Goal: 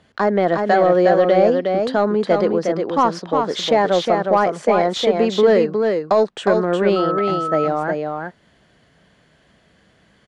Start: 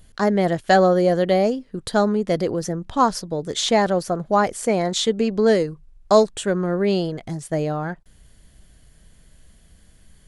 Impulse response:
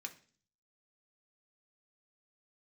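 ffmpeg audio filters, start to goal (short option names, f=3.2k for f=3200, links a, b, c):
-filter_complex "[0:a]acrossover=split=150[a][b];[a]acompressor=threshold=-49dB:ratio=6[c];[c][b]amix=inputs=2:normalize=0,alimiter=limit=-10dB:level=0:latency=1:release=81,highpass=110,lowpass=5.9k,asplit=2[d][e];[e]highpass=f=720:p=1,volume=9dB,asoftclip=type=tanh:threshold=-8.5dB[f];[d][f]amix=inputs=2:normalize=0,lowpass=f=1.3k:p=1,volume=-6dB,asplit=2[g][h];[h]aecho=0:1:361:0.596[i];[g][i]amix=inputs=2:normalize=0,asettb=1/sr,asplit=3[j][k][l];[j]atrim=end=6.964[m];[k]atrim=start=6.96:end=7.68,asetpts=PTS-STARTPTS,afade=t=in:d=0.004:c=qsin,afade=t=out:st=0.716:d=0.004:c=qsin,aeval=exprs='val(0)+0.0501*sin(2*PI*1300*n/s)':c=same[n];[l]atrim=start=7.676[o];[m][n]acrossfade=d=0.004:c1=hsin:c2=qsin[p];[p][o]acrossfade=d=0.004:c1=qsin:c2=hsin,volume=5dB"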